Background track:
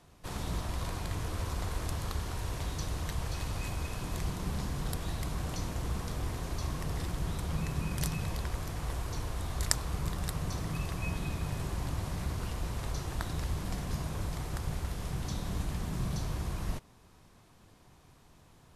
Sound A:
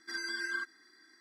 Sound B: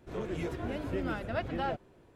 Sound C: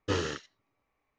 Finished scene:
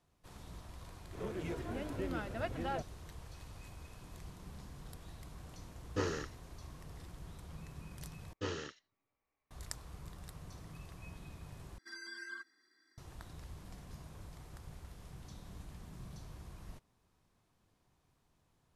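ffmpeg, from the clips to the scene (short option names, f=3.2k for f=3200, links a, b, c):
-filter_complex "[3:a]asplit=2[a][b];[0:a]volume=-15.5dB[c];[a]equalizer=f=3.2k:w=2.2:g=-8.5[d];[c]asplit=3[e][f][g];[e]atrim=end=8.334[h];[b]atrim=end=1.18,asetpts=PTS-STARTPTS,volume=-9.5dB[i];[f]atrim=start=9.506:end=11.784[j];[1:a]atrim=end=1.2,asetpts=PTS-STARTPTS,volume=-10.5dB[k];[g]atrim=start=12.976[l];[2:a]atrim=end=2.15,asetpts=PTS-STARTPTS,volume=-5dB,afade=t=in:d=0.004:c=hsin,afade=t=out:st=2.146:d=0.004:c=hsin,adelay=1060[m];[d]atrim=end=1.18,asetpts=PTS-STARTPTS,volume=-5dB,afade=t=in:d=0.004:c=hsin,afade=t=out:st=1.176:d=0.004:c=hsin,adelay=5880[n];[h][i]acrossfade=d=0.004:c1=hsin:c2=hsin[o];[o][j]acrossfade=d=0.004:c1=hsin:c2=hsin[p];[p][k]acrossfade=d=0.004:c1=hsin:c2=hsin[q];[q][l]acrossfade=d=0.004:c1=hsin:c2=hsin[r];[r][m][n]amix=inputs=3:normalize=0"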